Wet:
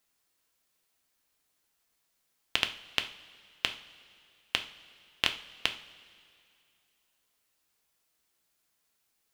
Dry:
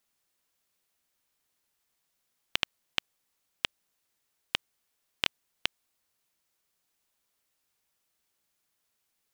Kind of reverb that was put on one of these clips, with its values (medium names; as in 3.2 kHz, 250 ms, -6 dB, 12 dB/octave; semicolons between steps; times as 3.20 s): two-slope reverb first 0.39 s, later 2.5 s, from -17 dB, DRR 6 dB; trim +1 dB